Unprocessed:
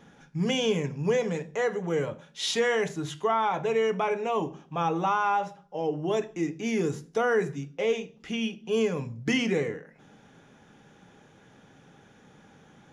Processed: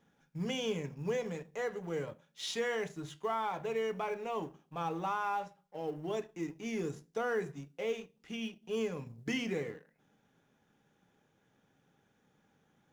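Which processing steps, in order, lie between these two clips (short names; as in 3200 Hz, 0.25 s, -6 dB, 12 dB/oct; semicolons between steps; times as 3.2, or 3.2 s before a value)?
G.711 law mismatch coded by A; gain -8.5 dB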